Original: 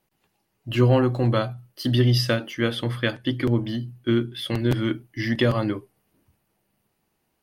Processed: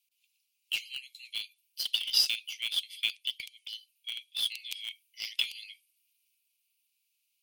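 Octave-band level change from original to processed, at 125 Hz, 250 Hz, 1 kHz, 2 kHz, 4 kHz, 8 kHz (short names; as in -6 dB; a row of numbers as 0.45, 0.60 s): under -40 dB, under -40 dB, under -25 dB, -8.0 dB, +2.0 dB, +3.0 dB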